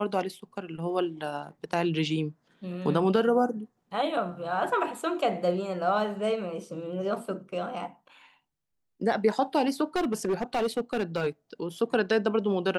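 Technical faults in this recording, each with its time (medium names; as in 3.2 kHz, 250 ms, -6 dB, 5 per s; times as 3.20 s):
9.96–11.27 s: clipped -22.5 dBFS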